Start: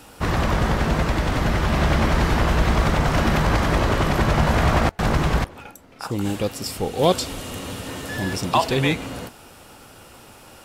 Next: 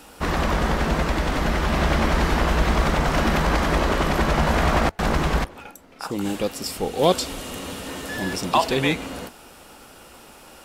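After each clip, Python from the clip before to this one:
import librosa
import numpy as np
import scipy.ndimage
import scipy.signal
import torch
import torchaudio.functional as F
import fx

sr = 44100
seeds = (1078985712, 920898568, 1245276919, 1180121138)

y = fx.peak_eq(x, sr, hz=110.0, db=-13.5, octaves=0.51)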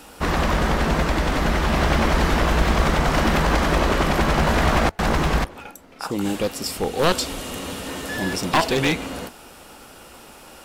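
y = np.minimum(x, 2.0 * 10.0 ** (-16.0 / 20.0) - x)
y = y * librosa.db_to_amplitude(2.0)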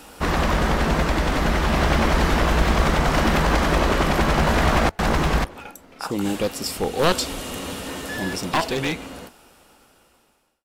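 y = fx.fade_out_tail(x, sr, length_s=2.93)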